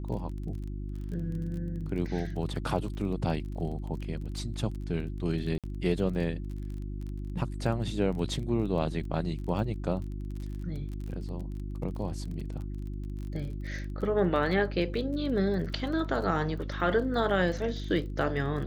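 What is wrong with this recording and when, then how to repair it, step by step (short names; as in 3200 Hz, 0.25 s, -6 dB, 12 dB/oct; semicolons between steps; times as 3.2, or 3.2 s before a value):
crackle 28/s -38 dBFS
hum 50 Hz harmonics 7 -36 dBFS
5.58–5.64 gap 57 ms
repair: de-click; de-hum 50 Hz, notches 7; interpolate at 5.58, 57 ms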